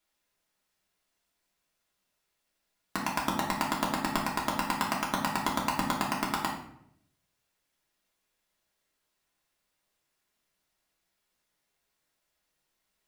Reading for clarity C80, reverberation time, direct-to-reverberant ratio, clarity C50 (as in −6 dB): 9.0 dB, 0.75 s, −4.5 dB, 5.0 dB